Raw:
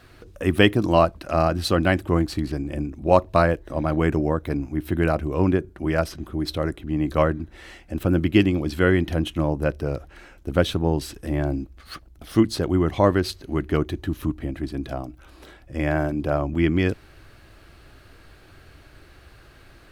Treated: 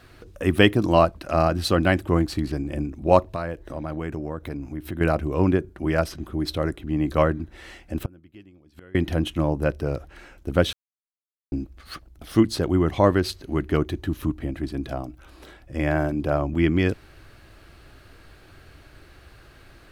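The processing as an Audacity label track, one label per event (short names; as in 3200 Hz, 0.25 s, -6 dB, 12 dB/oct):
3.240000	5.010000	compressor 2.5:1, threshold -30 dBFS
8.030000	8.950000	flipped gate shuts at -17 dBFS, range -30 dB
10.730000	11.520000	mute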